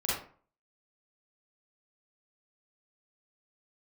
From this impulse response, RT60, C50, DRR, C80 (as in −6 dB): 0.45 s, −1.0 dB, −8.0 dB, 6.0 dB